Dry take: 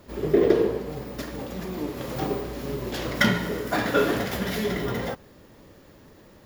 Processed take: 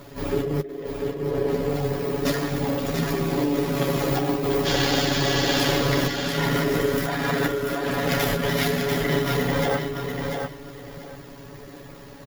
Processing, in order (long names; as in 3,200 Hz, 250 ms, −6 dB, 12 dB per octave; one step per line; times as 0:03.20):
healed spectral selection 0:02.48–0:02.92, 260–7,400 Hz after
compressor whose output falls as the input rises −30 dBFS, ratio −1
time stretch by overlap-add 1.9×, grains 30 ms
repeating echo 691 ms, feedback 20%, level −5.5 dB
level +6 dB